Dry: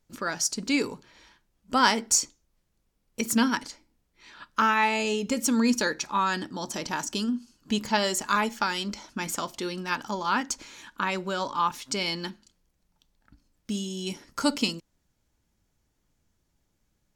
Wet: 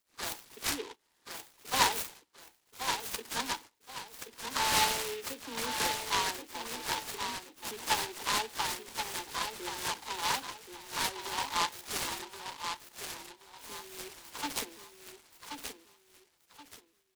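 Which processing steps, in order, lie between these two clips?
every frequency bin delayed by itself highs early, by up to 195 ms
high-pass filter 610 Hz 12 dB per octave
noise gate −44 dBFS, range −13 dB
high shelf with overshoot 6,400 Hz −8.5 dB, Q 1.5
phaser with its sweep stopped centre 900 Hz, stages 8
repeating echo 1,078 ms, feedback 30%, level −6.5 dB
short delay modulated by noise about 2,600 Hz, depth 0.14 ms
level −2 dB

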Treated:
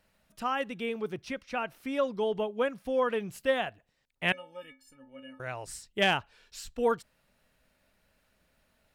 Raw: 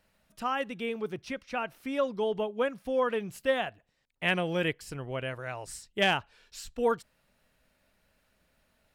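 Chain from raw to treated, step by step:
0:04.32–0:05.40: stiff-string resonator 260 Hz, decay 0.38 s, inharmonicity 0.03

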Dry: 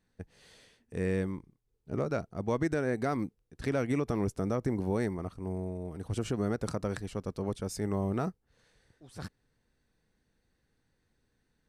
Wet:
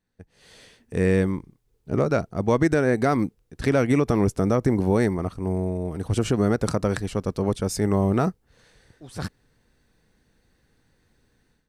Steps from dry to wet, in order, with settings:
automatic gain control gain up to 15 dB
level −4.5 dB

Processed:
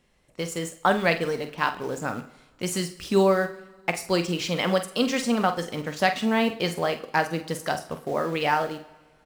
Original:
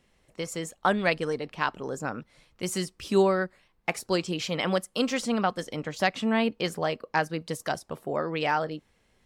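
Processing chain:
in parallel at −10.5 dB: bit-depth reduction 6 bits, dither none
on the sum: double-tracking delay 47 ms −10.5 dB
coupled-rooms reverb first 0.61 s, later 2.1 s, from −17 dB, DRR 10.5 dB

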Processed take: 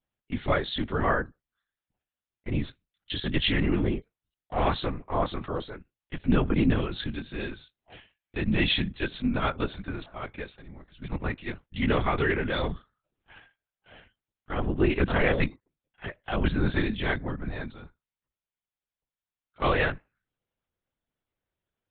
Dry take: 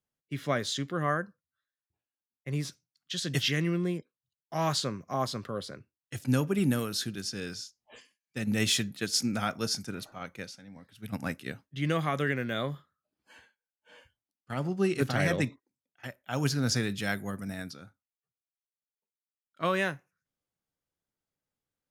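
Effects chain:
linear-prediction vocoder at 8 kHz whisper
level +4 dB

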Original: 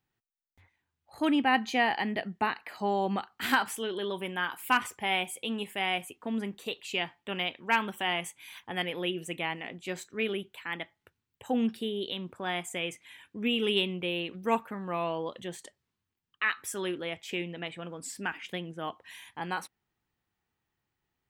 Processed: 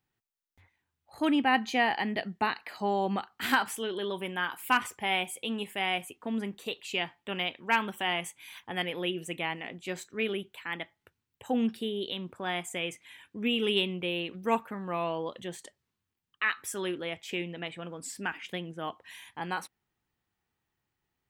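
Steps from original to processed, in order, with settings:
0:02.13–0:02.78: dynamic equaliser 4,300 Hz, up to +6 dB, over −54 dBFS, Q 1.8

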